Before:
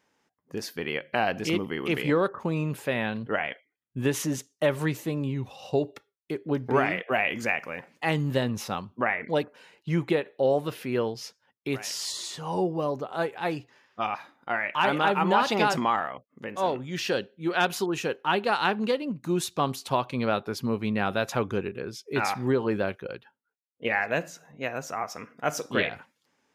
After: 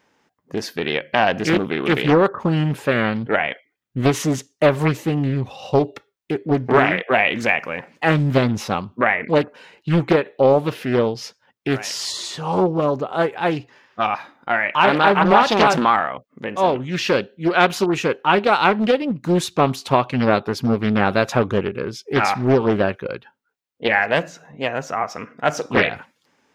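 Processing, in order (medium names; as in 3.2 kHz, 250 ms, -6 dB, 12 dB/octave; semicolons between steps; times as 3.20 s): peaking EQ 12 kHz -7.5 dB 1.4 oct, from 24.24 s -14 dB, from 25.76 s -4.5 dB; loudspeaker Doppler distortion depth 0.56 ms; trim +9 dB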